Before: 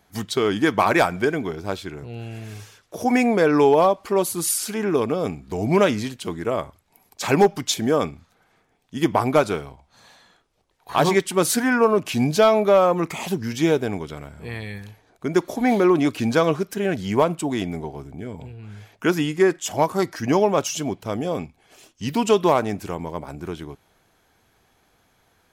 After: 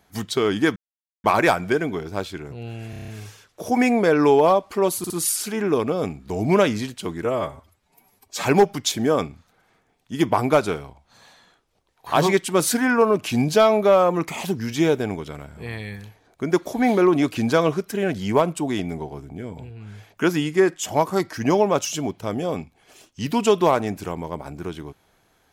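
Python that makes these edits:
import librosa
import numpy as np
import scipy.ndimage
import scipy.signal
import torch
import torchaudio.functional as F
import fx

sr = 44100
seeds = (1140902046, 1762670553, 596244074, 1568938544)

y = fx.edit(x, sr, fx.insert_silence(at_s=0.76, length_s=0.48),
    fx.stutter(start_s=2.42, slice_s=0.03, count=7),
    fx.stutter(start_s=4.32, slice_s=0.06, count=3),
    fx.stretch_span(start_s=6.47, length_s=0.79, factor=1.5), tone=tone)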